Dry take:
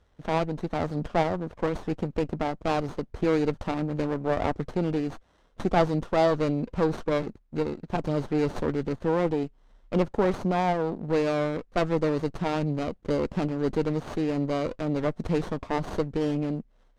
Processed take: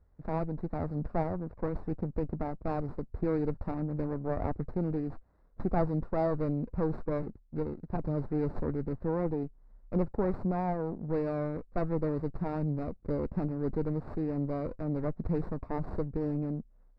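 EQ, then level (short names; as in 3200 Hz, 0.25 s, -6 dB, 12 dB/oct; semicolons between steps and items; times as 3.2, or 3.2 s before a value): running mean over 14 samples; low shelf 170 Hz +10 dB; -8.0 dB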